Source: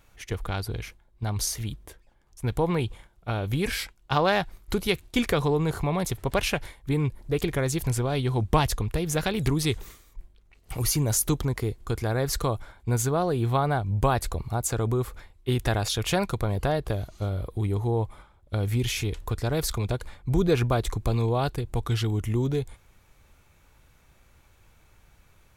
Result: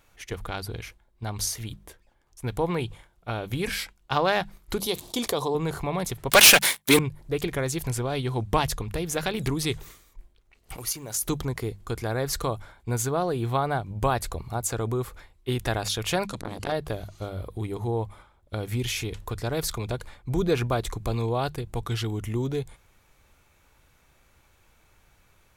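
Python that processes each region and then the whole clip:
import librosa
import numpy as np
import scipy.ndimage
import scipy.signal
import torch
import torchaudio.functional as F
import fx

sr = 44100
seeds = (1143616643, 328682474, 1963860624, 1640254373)

y = fx.chain(x, sr, fx.highpass(hz=380.0, slope=6),
    fx.band_shelf(hz=1900.0, db=-11.5, octaves=1.3),
    fx.env_flatten(amount_pct=50), at=(4.8, 5.55))
y = fx.chain(y, sr, fx.highpass(hz=150.0, slope=24),
    fx.tilt_eq(slope=3.5),
    fx.leveller(passes=5), at=(6.3, 6.99))
y = fx.chain(y, sr, fx.law_mismatch(coded='A'),
    fx.low_shelf(hz=240.0, db=-9.5),
    fx.level_steps(step_db=9), at=(10.76, 11.22))
y = fx.chain(y, sr, fx.lowpass(hz=8200.0, slope=12),
    fx.high_shelf(hz=3300.0, db=11.5),
    fx.transformer_sat(knee_hz=660.0), at=(16.26, 16.72))
y = fx.low_shelf(y, sr, hz=240.0, db=-4.0)
y = fx.hum_notches(y, sr, base_hz=50, count=4)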